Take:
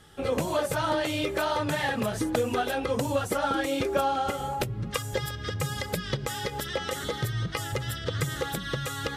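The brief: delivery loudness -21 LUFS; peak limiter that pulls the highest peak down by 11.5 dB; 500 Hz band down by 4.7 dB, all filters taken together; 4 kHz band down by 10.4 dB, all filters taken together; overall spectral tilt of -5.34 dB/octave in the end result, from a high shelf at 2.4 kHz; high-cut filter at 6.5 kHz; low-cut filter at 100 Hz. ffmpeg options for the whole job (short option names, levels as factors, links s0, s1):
-af "highpass=100,lowpass=6500,equalizer=f=500:t=o:g=-5,highshelf=f=2400:g=-6.5,equalizer=f=4000:t=o:g=-7.5,volume=5.31,alimiter=limit=0.266:level=0:latency=1"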